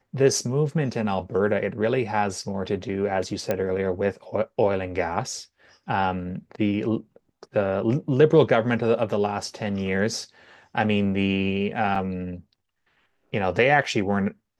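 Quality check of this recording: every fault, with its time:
0:03.51: click −11 dBFS
0:11.95–0:11.96: drop-out 5.2 ms

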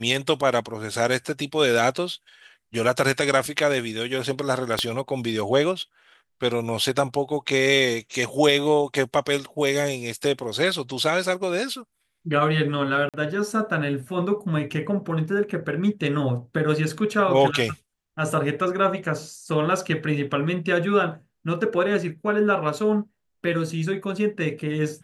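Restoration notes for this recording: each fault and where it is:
0:04.79: click −8 dBFS
0:13.09–0:13.14: drop-out 47 ms

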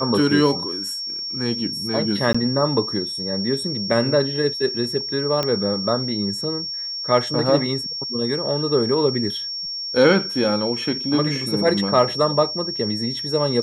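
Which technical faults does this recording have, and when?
whistle 5,500 Hz −26 dBFS
0:02.33–0:02.35: drop-out 15 ms
0:05.43: click −8 dBFS

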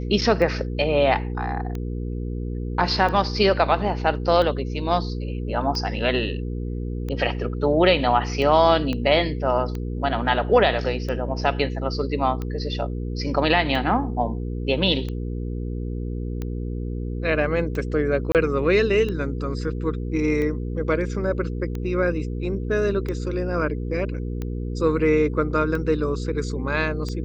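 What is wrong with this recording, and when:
mains hum 60 Hz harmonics 8 −28 dBFS
scratch tick 45 rpm −18 dBFS
0:08.93: click −15 dBFS
0:18.32–0:18.35: drop-out 28 ms

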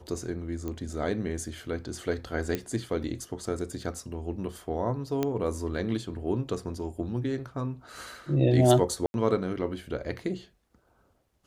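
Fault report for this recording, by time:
0:00.68: click −22 dBFS
0:02.55: click −15 dBFS
0:05.23: click −14 dBFS
0:09.06–0:09.14: drop-out 81 ms

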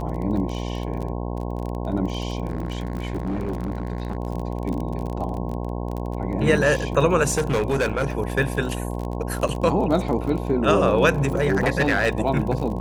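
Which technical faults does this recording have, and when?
mains buzz 60 Hz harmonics 18 −28 dBFS
surface crackle 30 per second −28 dBFS
0:02.48–0:04.17: clipping −22 dBFS
0:07.27–0:08.07: clipping −17 dBFS
0:09.48–0:09.49: drop-out 6.3 ms
0:11.22–0:12.09: clipping −14 dBFS

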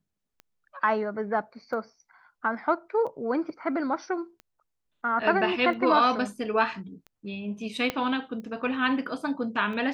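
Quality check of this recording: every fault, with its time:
scratch tick 45 rpm −30 dBFS
0:07.90: click −13 dBFS

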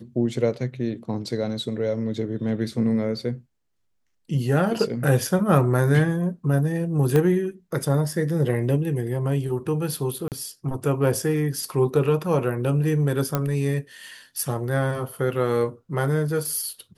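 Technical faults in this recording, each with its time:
0:07.16: click −10 dBFS
0:10.28–0:10.32: drop-out 38 ms
0:13.35: click −8 dBFS

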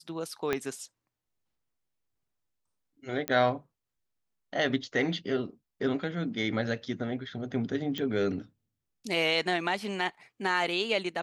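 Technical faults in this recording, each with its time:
0:00.53: click −14 dBFS
0:03.28: click −13 dBFS
0:07.98: click −20 dBFS

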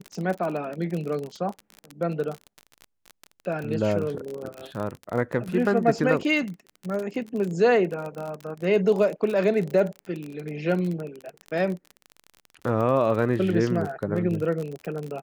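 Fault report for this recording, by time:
surface crackle 34 per second −29 dBFS

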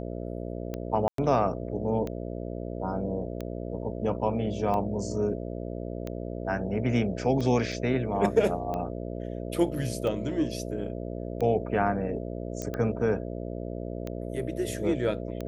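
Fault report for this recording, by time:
mains buzz 60 Hz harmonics 11 −35 dBFS
scratch tick 45 rpm −21 dBFS
0:01.08–0:01.18: drop-out 103 ms
0:07.72: drop-out 5 ms
0:12.62: click −19 dBFS

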